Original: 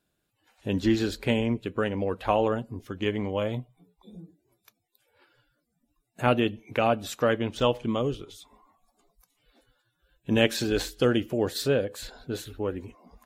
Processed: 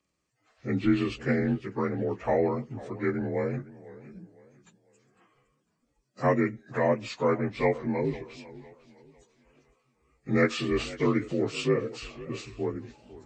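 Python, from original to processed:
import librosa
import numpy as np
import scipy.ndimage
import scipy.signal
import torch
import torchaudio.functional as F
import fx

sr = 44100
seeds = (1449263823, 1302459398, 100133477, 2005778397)

y = fx.partial_stretch(x, sr, pct=85)
y = fx.echo_warbled(y, sr, ms=504, feedback_pct=34, rate_hz=2.8, cents=159, wet_db=-18)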